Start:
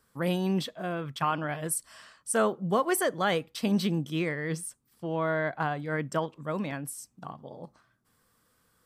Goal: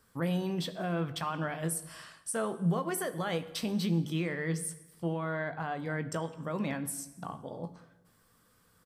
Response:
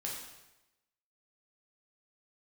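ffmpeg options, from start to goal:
-filter_complex "[0:a]alimiter=level_in=3dB:limit=-24dB:level=0:latency=1:release=149,volume=-3dB,asplit=2[link_01][link_02];[link_02]adelay=18,volume=-11.5dB[link_03];[link_01][link_03]amix=inputs=2:normalize=0,asplit=2[link_04][link_05];[1:a]atrim=start_sample=2205,asetrate=41454,aresample=44100,lowshelf=frequency=260:gain=10[link_06];[link_05][link_06]afir=irnorm=-1:irlink=0,volume=-11.5dB[link_07];[link_04][link_07]amix=inputs=2:normalize=0"

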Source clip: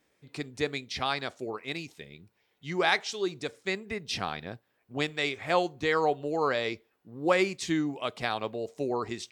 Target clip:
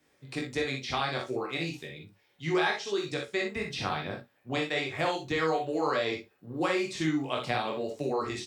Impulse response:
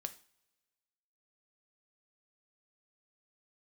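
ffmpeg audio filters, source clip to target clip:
-filter_complex "[0:a]flanger=delay=20:depth=4.7:speed=0.91,acrossover=split=1200|2800[link_01][link_02][link_03];[link_01]acompressor=threshold=-34dB:ratio=4[link_04];[link_02]acompressor=threshold=-42dB:ratio=4[link_05];[link_03]acompressor=threshold=-43dB:ratio=4[link_06];[link_04][link_05][link_06]amix=inputs=3:normalize=0,atempo=1.1,aecho=1:1:44|60:0.473|0.376,acrossover=split=100|3800[link_07][link_08][link_09];[link_09]alimiter=level_in=16.5dB:limit=-24dB:level=0:latency=1,volume=-16.5dB[link_10];[link_07][link_08][link_10]amix=inputs=3:normalize=0[link_11];[1:a]atrim=start_sample=2205,atrim=end_sample=3087[link_12];[link_11][link_12]afir=irnorm=-1:irlink=0,volume=8dB"

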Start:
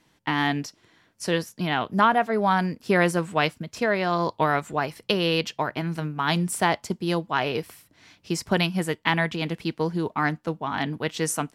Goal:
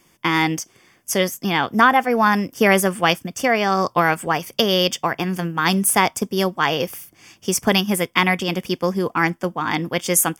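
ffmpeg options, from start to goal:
ffmpeg -i in.wav -af "crystalizer=i=1.5:c=0,asuperstop=centerf=3600:order=4:qfactor=4.5,asetrate=48951,aresample=44100,volume=5dB" out.wav

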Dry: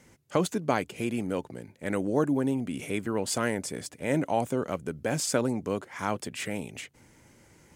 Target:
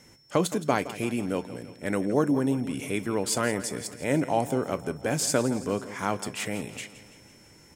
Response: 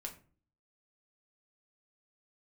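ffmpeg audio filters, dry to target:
-filter_complex "[0:a]aecho=1:1:167|334|501|668|835|1002:0.178|0.101|0.0578|0.0329|0.0188|0.0107,asplit=2[link_01][link_02];[1:a]atrim=start_sample=2205,atrim=end_sample=3528,highshelf=frequency=4800:gain=11[link_03];[link_02][link_03]afir=irnorm=-1:irlink=0,volume=-9.5dB[link_04];[link_01][link_04]amix=inputs=2:normalize=0,aeval=exprs='val(0)+0.00126*sin(2*PI*5400*n/s)':channel_layout=same"

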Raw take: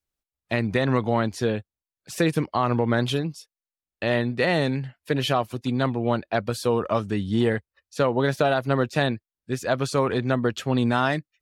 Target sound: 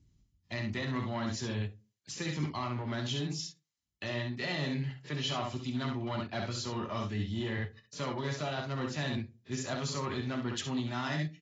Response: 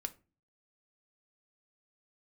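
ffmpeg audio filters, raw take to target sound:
-filter_complex "[0:a]asoftclip=type=tanh:threshold=-13dB,equalizer=frequency=110:width=0.51:gain=9,aecho=1:1:27|66:0.126|0.473,acrossover=split=290[link_01][link_02];[link_01]acompressor=mode=upward:threshold=-38dB:ratio=2.5[link_03];[link_02]crystalizer=i=8.5:c=0[link_04];[link_03][link_04]amix=inputs=2:normalize=0,highshelf=frequency=5000:gain=-6,areverse,acompressor=threshold=-28dB:ratio=6,areverse,highpass=56[link_05];[1:a]atrim=start_sample=2205,asetrate=61740,aresample=44100[link_06];[link_05][link_06]afir=irnorm=-1:irlink=0" -ar 16000 -c:a aac -b:a 24k

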